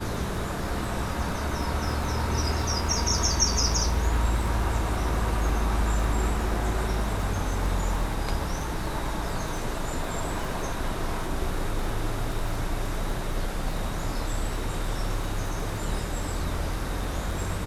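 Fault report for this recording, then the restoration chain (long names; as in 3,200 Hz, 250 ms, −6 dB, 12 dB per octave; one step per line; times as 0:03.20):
surface crackle 20 per second −30 dBFS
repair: click removal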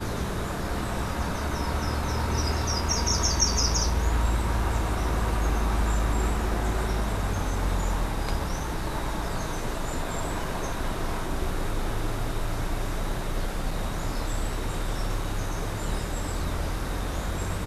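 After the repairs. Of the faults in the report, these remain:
none of them is left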